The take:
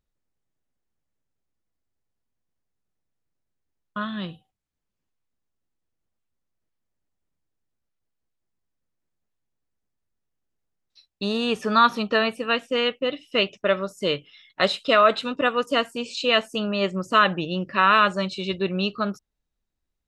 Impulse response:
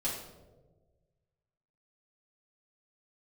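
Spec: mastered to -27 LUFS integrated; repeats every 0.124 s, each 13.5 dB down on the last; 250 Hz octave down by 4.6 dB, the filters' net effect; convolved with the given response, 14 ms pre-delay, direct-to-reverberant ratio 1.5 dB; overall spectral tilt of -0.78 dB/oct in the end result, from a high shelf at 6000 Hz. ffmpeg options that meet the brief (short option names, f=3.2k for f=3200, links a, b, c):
-filter_complex "[0:a]equalizer=f=250:t=o:g=-6,highshelf=f=6k:g=8,aecho=1:1:124|248:0.211|0.0444,asplit=2[a][b];[1:a]atrim=start_sample=2205,adelay=14[c];[b][c]afir=irnorm=-1:irlink=0,volume=-5.5dB[d];[a][d]amix=inputs=2:normalize=0,volume=-7dB"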